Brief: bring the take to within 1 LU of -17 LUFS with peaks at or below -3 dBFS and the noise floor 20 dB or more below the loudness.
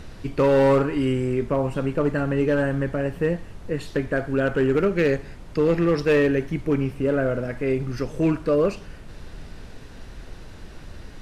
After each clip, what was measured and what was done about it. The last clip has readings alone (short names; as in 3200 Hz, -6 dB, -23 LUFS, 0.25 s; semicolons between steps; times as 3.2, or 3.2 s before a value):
clipped 1.0%; flat tops at -13.5 dBFS; noise floor -41 dBFS; noise floor target -43 dBFS; loudness -23.0 LUFS; peak -13.5 dBFS; loudness target -17.0 LUFS
-> clip repair -13.5 dBFS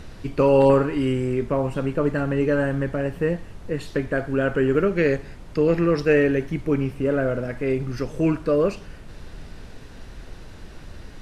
clipped 0.0%; noise floor -41 dBFS; noise floor target -43 dBFS
-> noise print and reduce 6 dB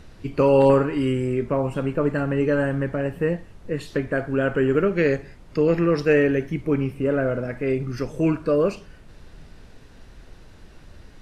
noise floor -47 dBFS; loudness -22.5 LUFS; peak -5.0 dBFS; loudness target -17.0 LUFS
-> gain +5.5 dB; limiter -3 dBFS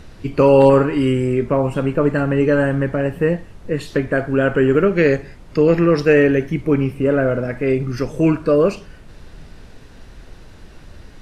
loudness -17.0 LUFS; peak -3.0 dBFS; noise floor -42 dBFS